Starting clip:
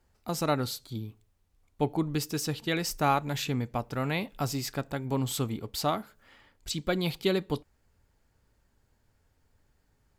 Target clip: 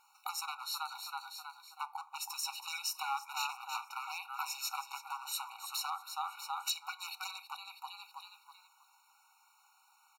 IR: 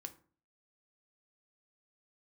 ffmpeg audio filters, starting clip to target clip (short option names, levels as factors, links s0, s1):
-filter_complex "[0:a]asplit=5[s0][s1][s2][s3][s4];[s1]adelay=322,afreqshift=37,volume=0.282[s5];[s2]adelay=644,afreqshift=74,volume=0.0955[s6];[s3]adelay=966,afreqshift=111,volume=0.0327[s7];[s4]adelay=1288,afreqshift=148,volume=0.0111[s8];[s0][s5][s6][s7][s8]amix=inputs=5:normalize=0,acrossover=split=130[s9][s10];[s10]acompressor=threshold=0.00708:ratio=6[s11];[s9][s11]amix=inputs=2:normalize=0,aeval=exprs='0.0224*(abs(mod(val(0)/0.0224+3,4)-2)-1)':c=same,asplit=2[s12][s13];[1:a]atrim=start_sample=2205[s14];[s13][s14]afir=irnorm=-1:irlink=0,volume=1.88[s15];[s12][s15]amix=inputs=2:normalize=0,afftfilt=real='re*eq(mod(floor(b*sr/1024/740),2),1)':imag='im*eq(mod(floor(b*sr/1024/740),2),1)':win_size=1024:overlap=0.75,volume=2.24"